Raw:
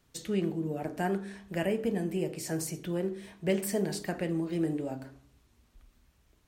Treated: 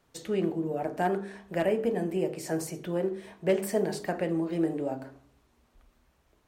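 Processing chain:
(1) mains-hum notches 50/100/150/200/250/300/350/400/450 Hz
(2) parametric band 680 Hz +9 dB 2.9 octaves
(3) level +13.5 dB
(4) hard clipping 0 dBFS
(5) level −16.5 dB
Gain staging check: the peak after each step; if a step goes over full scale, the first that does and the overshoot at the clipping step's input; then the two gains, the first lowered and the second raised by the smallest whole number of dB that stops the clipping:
−15.5, −10.5, +3.0, 0.0, −16.5 dBFS
step 3, 3.0 dB
step 3 +10.5 dB, step 5 −13.5 dB

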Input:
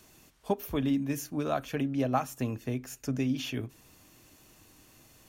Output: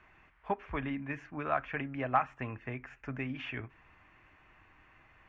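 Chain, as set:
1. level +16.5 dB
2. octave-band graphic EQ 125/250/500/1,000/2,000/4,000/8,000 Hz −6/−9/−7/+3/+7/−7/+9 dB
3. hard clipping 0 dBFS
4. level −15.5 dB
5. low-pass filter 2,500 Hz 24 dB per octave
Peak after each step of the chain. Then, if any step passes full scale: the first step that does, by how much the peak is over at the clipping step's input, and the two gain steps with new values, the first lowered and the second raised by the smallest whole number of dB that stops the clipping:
+3.5, +3.5, 0.0, −15.5, −14.5 dBFS
step 1, 3.5 dB
step 1 +12.5 dB, step 4 −11.5 dB

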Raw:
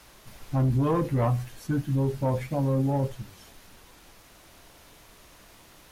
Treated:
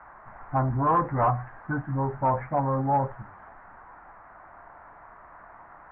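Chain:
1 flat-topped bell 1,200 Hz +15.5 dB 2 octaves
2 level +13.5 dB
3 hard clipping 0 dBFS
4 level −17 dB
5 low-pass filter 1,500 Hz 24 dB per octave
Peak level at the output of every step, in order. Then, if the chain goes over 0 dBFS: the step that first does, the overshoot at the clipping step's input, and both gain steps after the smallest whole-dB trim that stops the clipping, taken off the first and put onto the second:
−3.5, +10.0, 0.0, −17.0, −15.0 dBFS
step 2, 10.0 dB
step 2 +3.5 dB, step 4 −7 dB

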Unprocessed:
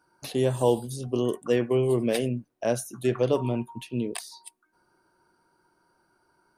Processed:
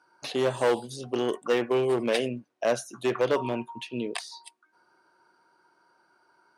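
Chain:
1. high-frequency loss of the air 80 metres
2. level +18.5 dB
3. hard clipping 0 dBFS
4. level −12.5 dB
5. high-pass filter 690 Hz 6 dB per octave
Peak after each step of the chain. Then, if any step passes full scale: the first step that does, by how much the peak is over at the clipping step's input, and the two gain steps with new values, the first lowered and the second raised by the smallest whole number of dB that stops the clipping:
−9.5, +9.0, 0.0, −12.5, −11.0 dBFS
step 2, 9.0 dB
step 2 +9.5 dB, step 4 −3.5 dB

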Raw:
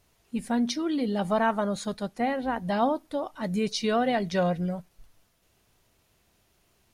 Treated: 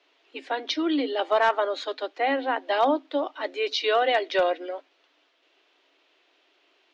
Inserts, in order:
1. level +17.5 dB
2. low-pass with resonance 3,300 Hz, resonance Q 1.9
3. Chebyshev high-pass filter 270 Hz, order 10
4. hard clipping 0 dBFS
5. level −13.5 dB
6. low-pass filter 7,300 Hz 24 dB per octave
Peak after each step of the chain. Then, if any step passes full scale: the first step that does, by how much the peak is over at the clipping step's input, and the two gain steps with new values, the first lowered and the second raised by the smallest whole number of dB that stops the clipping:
+4.0, +4.5, +4.0, 0.0, −13.5, −13.0 dBFS
step 1, 4.0 dB
step 1 +13.5 dB, step 5 −9.5 dB

